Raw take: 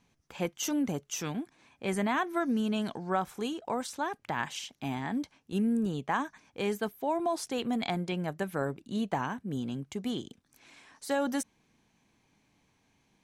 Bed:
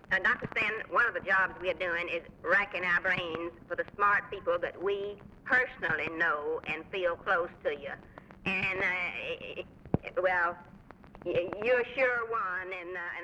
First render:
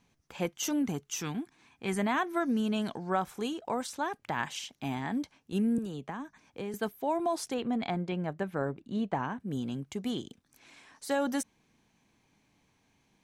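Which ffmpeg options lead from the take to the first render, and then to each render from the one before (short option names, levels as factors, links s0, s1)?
-filter_complex "[0:a]asettb=1/sr,asplit=3[s0][s1][s2];[s0]atrim=end=0.824[s3];[s1]atrim=start=0.82:end=1.99,asetpts=PTS-STARTPTS,afade=t=in:d=0.004:c=qsin,afade=t=out:st=1.166:d=0.004:c=qsin,equalizer=f=570:w=5:g=-13[s4];[s2]atrim=start=1.986[s5];[s3][s4]acrossfade=d=0.004:c1=hsin:c2=qsin[s6];[s6][s5]acrossfade=d=0.004:c1=qsin:c2=hsin,asettb=1/sr,asplit=3[s7][s8][s9];[s7]atrim=end=5.784[s10];[s8]atrim=start=5.78:end=6.74,asetpts=PTS-STARTPTS,afade=t=in:d=0.004:c=qsin,afade=t=out:st=0.956:d=0.004:c=qsin,acrossover=split=320|1600[s11][s12][s13];[s11]acompressor=threshold=0.0112:ratio=4[s14];[s12]acompressor=threshold=0.00794:ratio=4[s15];[s13]acompressor=threshold=0.00224:ratio=4[s16];[s14][s15][s16]amix=inputs=3:normalize=0[s17];[s9]atrim=start=6.736[s18];[s10][s17]acrossfade=d=0.004:c1=hsin:c2=qsin[s19];[s19][s18]acrossfade=d=0.004:c1=qsin:c2=hsin,asettb=1/sr,asplit=3[s20][s21][s22];[s20]atrim=end=7.544[s23];[s21]atrim=start=7.54:end=9.4,asetpts=PTS-STARTPTS,afade=t=in:d=0.004:c=qsin,afade=t=out:st=1.856:d=0.004:c=qsin,aemphasis=mode=reproduction:type=75kf[s24];[s22]atrim=start=9.396[s25];[s23][s24]acrossfade=d=0.004:c1=hsin:c2=qsin[s26];[s26][s25]acrossfade=d=0.004:c1=qsin:c2=hsin"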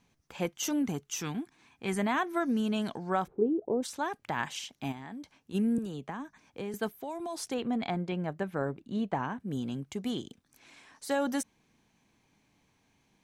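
-filter_complex "[0:a]asplit=3[s0][s1][s2];[s0]afade=t=out:st=3.26:d=0.02[s3];[s1]lowpass=f=400:t=q:w=4.1,afade=t=in:st=3.26:d=0.02,afade=t=out:st=3.82:d=0.02[s4];[s2]afade=t=in:st=3.82:d=0.02[s5];[s3][s4][s5]amix=inputs=3:normalize=0,asplit=3[s6][s7][s8];[s6]afade=t=out:st=4.91:d=0.02[s9];[s7]acompressor=threshold=0.00891:ratio=4:attack=3.2:release=140:knee=1:detection=peak,afade=t=in:st=4.91:d=0.02,afade=t=out:st=5.53:d=0.02[s10];[s8]afade=t=in:st=5.53:d=0.02[s11];[s9][s10][s11]amix=inputs=3:normalize=0,asettb=1/sr,asplit=3[s12][s13][s14];[s12]atrim=end=6.894[s15];[s13]atrim=start=6.89:end=7.51,asetpts=PTS-STARTPTS,afade=t=in:d=0.004:c=qsin,afade=t=out:st=0.616:d=0.004:c=qsin,acrossover=split=150|3000[s16][s17][s18];[s17]acompressor=threshold=0.0141:ratio=3:attack=3.2:release=140:knee=2.83:detection=peak[s19];[s16][s19][s18]amix=inputs=3:normalize=0[s20];[s14]atrim=start=7.506[s21];[s15][s20]acrossfade=d=0.004:c1=hsin:c2=qsin[s22];[s22][s21]acrossfade=d=0.004:c1=qsin:c2=hsin"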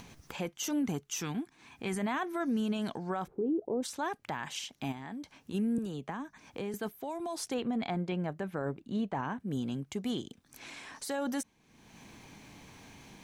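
-af "acompressor=mode=upward:threshold=0.0141:ratio=2.5,alimiter=level_in=1.12:limit=0.0631:level=0:latency=1:release=37,volume=0.891"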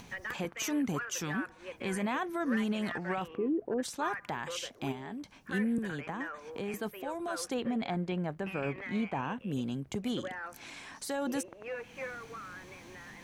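-filter_complex "[1:a]volume=0.224[s0];[0:a][s0]amix=inputs=2:normalize=0"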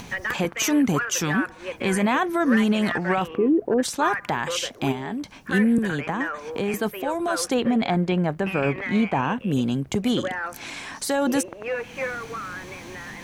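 -af "volume=3.76"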